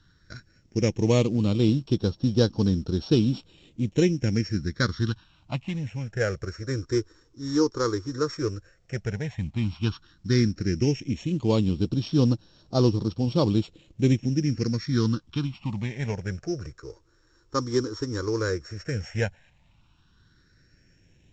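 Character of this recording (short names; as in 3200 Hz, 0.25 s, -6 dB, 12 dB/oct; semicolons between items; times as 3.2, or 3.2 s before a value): a buzz of ramps at a fixed pitch in blocks of 8 samples; phasing stages 6, 0.099 Hz, lowest notch 180–2100 Hz; µ-law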